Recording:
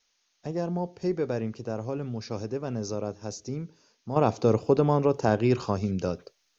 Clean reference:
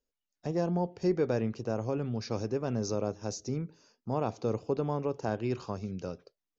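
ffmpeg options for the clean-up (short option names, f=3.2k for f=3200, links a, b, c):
-af "agate=range=-21dB:threshold=-64dB,asetnsamples=n=441:p=0,asendcmd='4.16 volume volume -9dB',volume=0dB"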